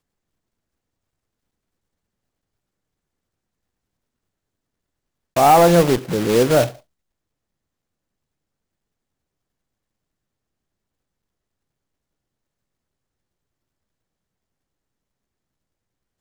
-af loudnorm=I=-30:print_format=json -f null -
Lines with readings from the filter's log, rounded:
"input_i" : "-15.4",
"input_tp" : "-5.7",
"input_lra" : "5.6",
"input_thresh" : "-26.1",